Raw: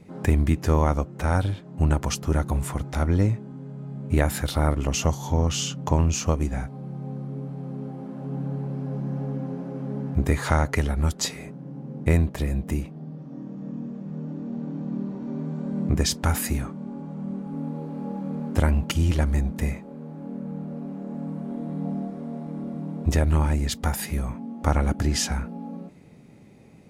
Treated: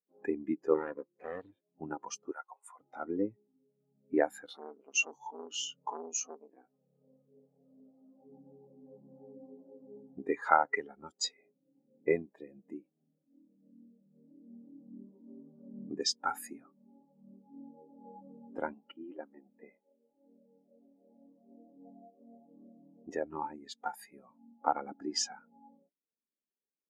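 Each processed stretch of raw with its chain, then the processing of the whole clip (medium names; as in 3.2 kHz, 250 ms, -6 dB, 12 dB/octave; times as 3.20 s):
0.74–1.52 s: comb filter that takes the minimum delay 0.42 ms + overload inside the chain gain 13 dB + loudspeaker Doppler distortion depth 0.37 ms
2.31–2.79 s: high-pass 740 Hz + treble shelf 5 kHz +3 dB
4.46–8.13 s: bass shelf 65 Hz -8.5 dB + doubling 16 ms -3 dB + transformer saturation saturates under 1.1 kHz
18.73–22.20 s: high-pass 210 Hz + distance through air 330 m
whole clip: dynamic bell 590 Hz, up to -6 dB, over -44 dBFS, Q 5.5; high-pass 420 Hz 12 dB/octave; spectral contrast expander 2.5:1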